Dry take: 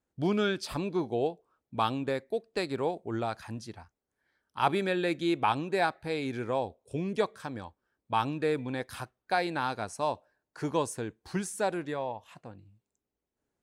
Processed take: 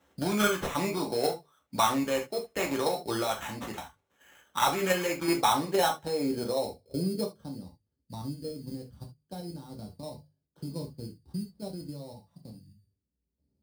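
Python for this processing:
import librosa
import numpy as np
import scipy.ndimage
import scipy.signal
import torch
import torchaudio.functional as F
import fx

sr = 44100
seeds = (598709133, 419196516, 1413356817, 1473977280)

y = scipy.ndimage.median_filter(x, 3, mode='constant')
y = fx.highpass(y, sr, hz=68.0, slope=6)
y = fx.low_shelf(y, sr, hz=470.0, db=-7.0)
y = fx.hum_notches(y, sr, base_hz=50, count=3)
y = fx.level_steps(y, sr, step_db=10)
y = fx.filter_sweep_lowpass(y, sr, from_hz=6000.0, to_hz=150.0, start_s=4.32, end_s=7.88, q=0.81)
y = fx.sample_hold(y, sr, seeds[0], rate_hz=4700.0, jitter_pct=0)
y = 10.0 ** (-21.0 / 20.0) * np.tanh(y / 10.0 ** (-21.0 / 20.0))
y = fx.rev_gated(y, sr, seeds[1], gate_ms=100, shape='falling', drr_db=-0.5)
y = fx.band_squash(y, sr, depth_pct=40)
y = y * librosa.db_to_amplitude(8.5)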